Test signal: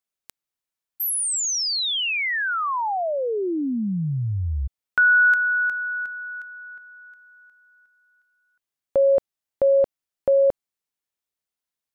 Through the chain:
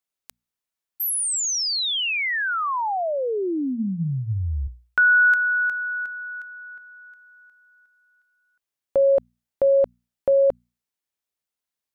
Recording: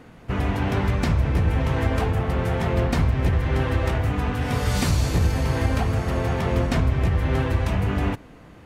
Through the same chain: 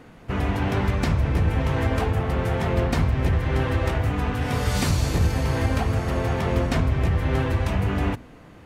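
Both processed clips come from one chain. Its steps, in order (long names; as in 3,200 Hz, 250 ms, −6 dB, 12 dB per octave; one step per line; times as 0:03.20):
mains-hum notches 60/120/180/240 Hz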